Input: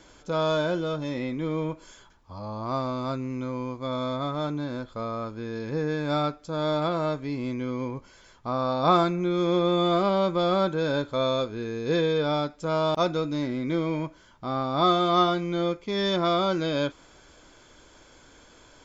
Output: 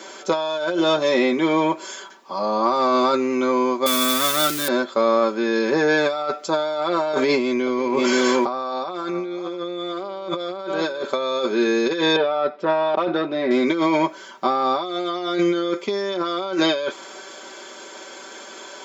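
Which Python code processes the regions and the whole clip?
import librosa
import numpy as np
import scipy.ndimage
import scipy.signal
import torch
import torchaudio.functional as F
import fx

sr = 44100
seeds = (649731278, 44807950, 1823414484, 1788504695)

y = fx.chain(x, sr, fx.crossing_spikes(level_db=-27.0),
    fx.band_shelf(hz=650.0, db=-11.5, octaves=1.7), at=(3.86, 4.68))
y = fx.chain(y, sr, fx.echo_single(ms=531, db=-14.0),
    fx.env_flatten(amount_pct=50), at=(7.13, 11.03))
y = fx.chain(y, sr, fx.tube_stage(drive_db=20.0, bias=0.35),
    fx.air_absorb(metres=380.0), at=(12.16, 13.51))
y = scipy.signal.sosfilt(scipy.signal.butter(4, 280.0, 'highpass', fs=sr, output='sos'), y)
y = y + 0.73 * np.pad(y, (int(5.2 * sr / 1000.0), 0))[:len(y)]
y = fx.over_compress(y, sr, threshold_db=-31.0, ratio=-1.0)
y = y * librosa.db_to_amplitude(9.0)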